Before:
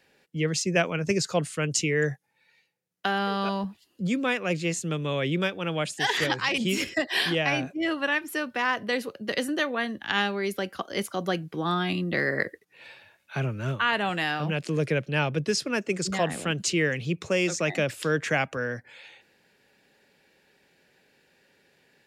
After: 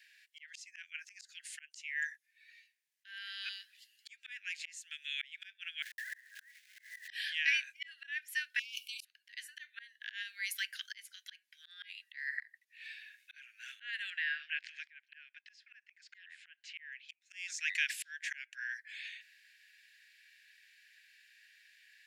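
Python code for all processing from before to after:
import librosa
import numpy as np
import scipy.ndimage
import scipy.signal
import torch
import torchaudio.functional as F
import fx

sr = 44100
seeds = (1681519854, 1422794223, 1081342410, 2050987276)

y = fx.chain(x, sr, fx.steep_lowpass(hz=2000.0, slope=96),
    fx.quant_companded(bits=4),
    fx.over_compress(threshold_db=-39.0, ratio=-1.0), at=(5.82, 7.08))
y = fx.chain(y, sr, fx.high_shelf(hz=6800.0, db=11.5),
    fx.over_compress(threshold_db=-35.0, ratio=-1.0),
    fx.brickwall_highpass(low_hz=2200.0), at=(8.59, 9.05))
y = fx.high_shelf(y, sr, hz=7000.0, db=9.0, at=(10.22, 10.62), fade=0.02)
y = fx.auto_swell(y, sr, attack_ms=276.0, at=(10.22, 10.62), fade=0.02)
y = fx.dmg_tone(y, sr, hz=1200.0, level_db=-49.0, at=(10.22, 10.62), fade=0.02)
y = fx.chain(y, sr, fx.spacing_loss(db_at_10k=33),
    fx.band_squash(depth_pct=70), at=(14.1, 17.09))
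y = scipy.signal.sosfilt(scipy.signal.butter(16, 1600.0, 'highpass', fs=sr, output='sos'), y)
y = fx.high_shelf(y, sr, hz=2900.0, db=-6.0)
y = fx.auto_swell(y, sr, attack_ms=750.0)
y = y * librosa.db_to_amplitude(6.0)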